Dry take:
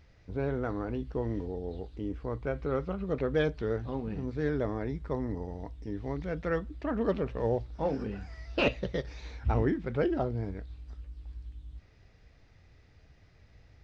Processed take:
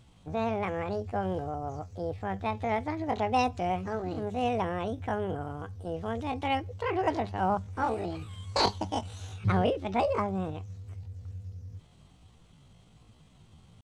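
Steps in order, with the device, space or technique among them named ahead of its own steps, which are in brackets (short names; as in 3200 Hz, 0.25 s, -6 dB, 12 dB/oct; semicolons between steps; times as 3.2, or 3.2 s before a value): chipmunk voice (pitch shift +8.5 st); gain +1.5 dB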